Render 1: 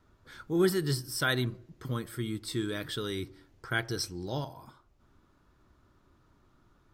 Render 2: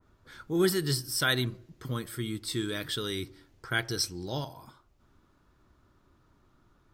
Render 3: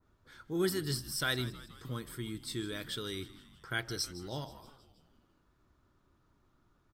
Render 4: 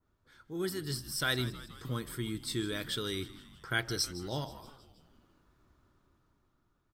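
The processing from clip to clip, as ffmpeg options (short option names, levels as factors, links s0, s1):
-af "adynamicequalizer=threshold=0.00501:dfrequency=2000:dqfactor=0.7:tfrequency=2000:tqfactor=0.7:attack=5:release=100:ratio=0.375:range=2.5:mode=boostabove:tftype=highshelf"
-filter_complex "[0:a]asplit=7[s0][s1][s2][s3][s4][s5][s6];[s1]adelay=159,afreqshift=-77,volume=0.141[s7];[s2]adelay=318,afreqshift=-154,volume=0.0851[s8];[s3]adelay=477,afreqshift=-231,volume=0.0507[s9];[s4]adelay=636,afreqshift=-308,volume=0.0305[s10];[s5]adelay=795,afreqshift=-385,volume=0.0184[s11];[s6]adelay=954,afreqshift=-462,volume=0.011[s12];[s0][s7][s8][s9][s10][s11][s12]amix=inputs=7:normalize=0,volume=0.501"
-af "dynaudnorm=f=250:g=9:m=2.82,volume=0.531"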